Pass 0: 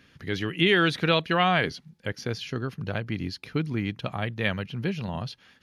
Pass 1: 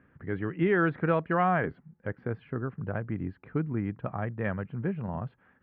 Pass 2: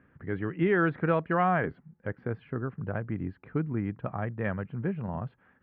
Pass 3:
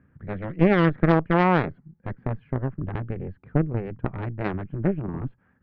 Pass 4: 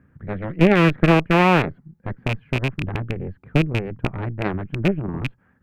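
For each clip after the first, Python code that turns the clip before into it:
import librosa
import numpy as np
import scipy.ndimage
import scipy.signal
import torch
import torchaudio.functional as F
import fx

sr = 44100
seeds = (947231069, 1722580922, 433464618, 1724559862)

y1 = scipy.signal.sosfilt(scipy.signal.cheby2(4, 70, 6800.0, 'lowpass', fs=sr, output='sos'), x)
y1 = F.gain(torch.from_numpy(y1), -2.0).numpy()
y2 = y1
y3 = fx.bass_treble(y2, sr, bass_db=10, treble_db=-12)
y3 = fx.cheby_harmonics(y3, sr, harmonics=(3, 4), levels_db=(-15, -11), full_scale_db=-9.0)
y3 = F.gain(torch.from_numpy(y3), 3.0).numpy()
y4 = fx.rattle_buzz(y3, sr, strikes_db=-26.0, level_db=-17.0)
y4 = F.gain(torch.from_numpy(y4), 3.5).numpy()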